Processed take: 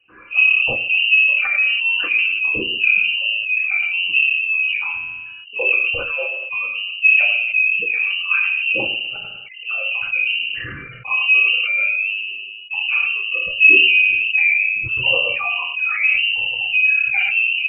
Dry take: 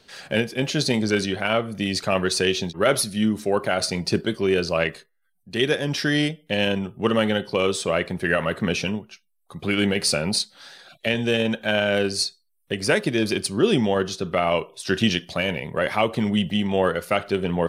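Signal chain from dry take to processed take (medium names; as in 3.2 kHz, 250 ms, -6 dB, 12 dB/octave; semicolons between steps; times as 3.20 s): resonances exaggerated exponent 3; reverb removal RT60 1.7 s; formant shift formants -5 st; random-step tremolo, depth 55%; echo from a far wall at 19 m, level -13 dB; reverberation RT60 0.55 s, pre-delay 3 ms, DRR -6.5 dB; frequency inversion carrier 2.9 kHz; decay stretcher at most 28 dB/s; trim -1.5 dB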